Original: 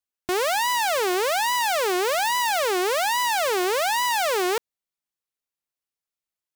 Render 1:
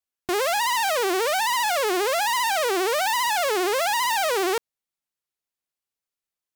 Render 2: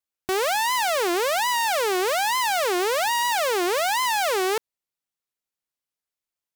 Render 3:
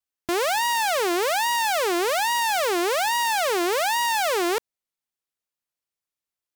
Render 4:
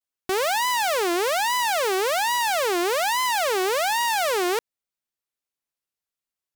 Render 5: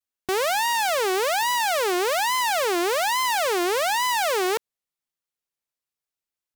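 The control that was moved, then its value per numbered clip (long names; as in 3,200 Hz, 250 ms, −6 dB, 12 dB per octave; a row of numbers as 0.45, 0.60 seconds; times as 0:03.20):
pitch vibrato, speed: 15, 4.3, 2.4, 0.66, 1 Hertz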